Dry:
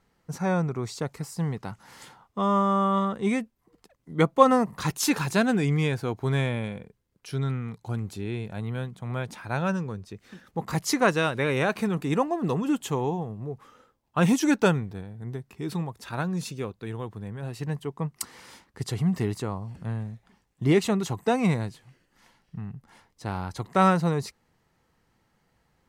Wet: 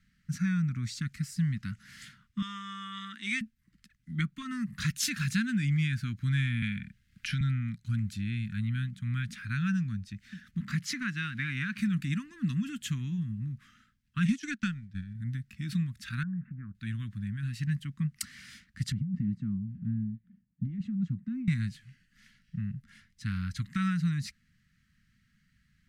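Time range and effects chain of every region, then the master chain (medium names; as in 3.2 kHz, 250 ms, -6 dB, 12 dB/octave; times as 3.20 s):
2.42–3.41 s: high-pass 320 Hz 24 dB/octave + peaking EQ 3.7 kHz +6.5 dB 1.7 oct
6.62–7.41 s: peaking EQ 2.2 kHz +6.5 dB 2.2 oct + three bands compressed up and down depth 70%
10.60–11.78 s: companding laws mixed up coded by mu + high-pass 140 Hz + treble shelf 4.8 kHz -10.5 dB
14.25–15.15 s: block-companded coder 7-bit + low-pass 8.2 kHz + transient shaper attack +9 dB, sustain -11 dB
16.23–16.75 s: steep low-pass 1.7 kHz 48 dB/octave + compression 2:1, threshold -39 dBFS
18.92–21.48 s: band-pass filter 210 Hz, Q 1.7 + compressor with a negative ratio -31 dBFS
whole clip: treble shelf 7 kHz -10 dB; compression 3:1, threshold -26 dBFS; elliptic band-stop 220–1600 Hz, stop band 50 dB; trim +2.5 dB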